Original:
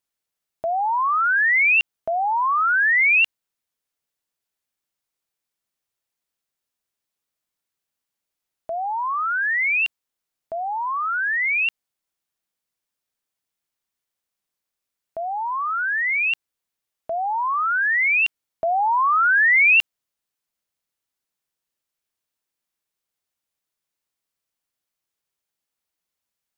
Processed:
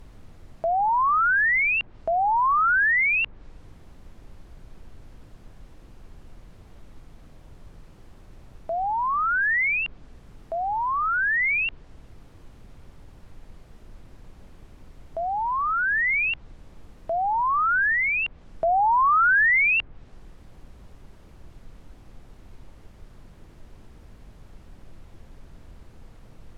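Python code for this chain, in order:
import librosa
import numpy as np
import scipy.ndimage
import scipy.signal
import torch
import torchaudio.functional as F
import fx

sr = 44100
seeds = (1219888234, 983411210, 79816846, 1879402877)

y = fx.dmg_noise_colour(x, sr, seeds[0], colour='brown', level_db=-44.0)
y = fx.env_lowpass_down(y, sr, base_hz=1900.0, full_db=-17.5)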